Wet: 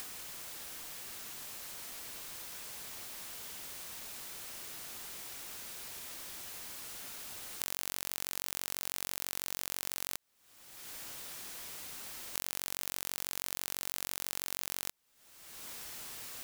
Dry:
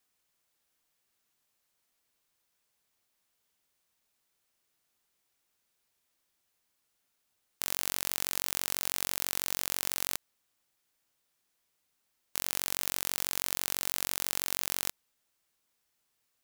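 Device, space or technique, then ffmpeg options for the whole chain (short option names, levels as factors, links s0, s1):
upward and downward compression: -af "acompressor=mode=upward:threshold=0.01:ratio=2.5,acompressor=threshold=0.00562:ratio=5,volume=4.22"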